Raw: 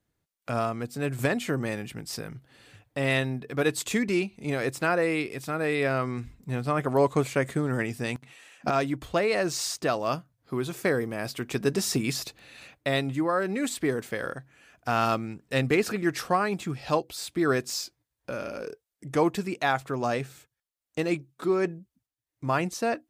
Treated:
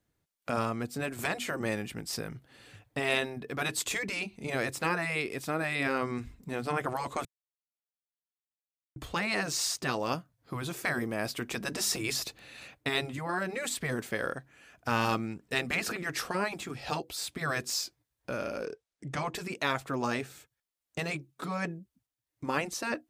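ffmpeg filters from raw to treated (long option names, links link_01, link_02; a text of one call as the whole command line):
ffmpeg -i in.wav -filter_complex "[0:a]asettb=1/sr,asplit=3[link_01][link_02][link_03];[link_01]atrim=end=18.654[link_04];[link_02]atrim=start=18.65:end=19.35,asetpts=PTS-STARTPTS,afade=type=in:duration=0.004:curve=qsin,afade=type=out:start_time=0.696:duration=0.004:curve=qsin,lowpass=7000[link_05];[link_03]atrim=start=19.346[link_06];[link_04][link_05]acrossfade=duration=0.004:curve1=hsin:curve2=qsin[link_07];[link_07][link_06]acrossfade=duration=0.004:curve1=qsin:curve2=hsin,asplit=3[link_08][link_09][link_10];[link_08]atrim=end=7.25,asetpts=PTS-STARTPTS,afade=type=out:start_time=7.246:duration=0.004:curve=hsin[link_11];[link_09]atrim=start=7.25:end=8.96,asetpts=PTS-STARTPTS,volume=0[link_12];[link_10]atrim=start=8.96,asetpts=PTS-STARTPTS,afade=type=in:duration=0.004:curve=hsin[link_13];[link_11][link_12][link_13]concat=n=3:v=0:a=1,afftfilt=real='re*lt(hypot(re,im),0.251)':imag='im*lt(hypot(re,im),0.251)':win_size=1024:overlap=0.75,adynamicequalizer=threshold=0.00251:dfrequency=130:dqfactor=2.8:tfrequency=130:tqfactor=2.8:attack=5:release=100:ratio=0.375:range=3:mode=cutabove:tftype=bell" out.wav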